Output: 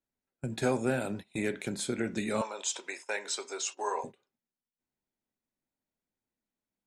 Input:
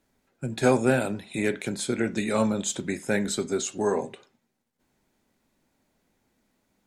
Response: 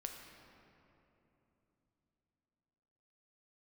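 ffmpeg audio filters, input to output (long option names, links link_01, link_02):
-filter_complex "[0:a]agate=range=-19dB:threshold=-35dB:ratio=16:detection=peak,acompressor=threshold=-31dB:ratio=1.5,asettb=1/sr,asplit=3[link_01][link_02][link_03];[link_01]atrim=end=2.414[link_04];[link_02]atrim=start=2.41:end=4.04,asetpts=PTS-STARTPTS,afade=type=in:duration=0.004:curve=qsin,afade=type=out:start_time=1.626:duration=0.004:curve=qsin,highpass=frequency=470:width=0.5412,highpass=frequency=470:width=1.3066,equalizer=frequency=580:width_type=q:width=4:gain=-3,equalizer=frequency=970:width_type=q:width=4:gain=9,equalizer=frequency=2600:width_type=q:width=4:gain=7,equalizer=frequency=5400:width_type=q:width=4:gain=8,lowpass=frequency=9400:width=0.5412,lowpass=frequency=9400:width=1.3066[link_05];[link_03]atrim=start=4.036[link_06];[link_04][link_05]acrossfade=duration=0.004:curve1=hsin:curve2=qsin[link_07];[link_07][link_06]acrossfade=duration=0.004:curve1=qsin:curve2=hsin,volume=-2.5dB"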